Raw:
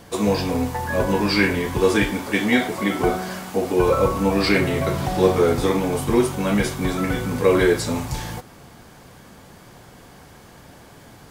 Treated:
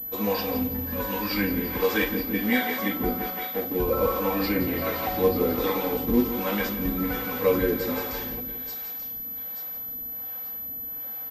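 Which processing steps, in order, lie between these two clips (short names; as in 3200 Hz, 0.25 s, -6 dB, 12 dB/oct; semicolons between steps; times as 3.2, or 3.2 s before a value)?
3.3–3.76 median filter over 41 samples; thin delay 0.884 s, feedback 35%, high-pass 3800 Hz, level -5 dB; flange 1.3 Hz, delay 8.1 ms, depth 1.4 ms, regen +69%; 0.61–1.31 bell 660 Hz -12 dB 0.81 oct; on a send: feedback echo 0.171 s, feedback 59%, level -9 dB; on the sum: harmonic tremolo 1.3 Hz, depth 70%, crossover 430 Hz; companded quantiser 6-bit; comb 3.9 ms, depth 68%; pulse-width modulation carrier 12000 Hz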